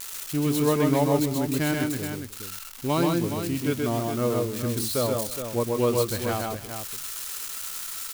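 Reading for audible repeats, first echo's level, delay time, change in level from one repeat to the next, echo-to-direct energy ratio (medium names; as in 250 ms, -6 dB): 3, -3.0 dB, 129 ms, no regular repeats, -1.5 dB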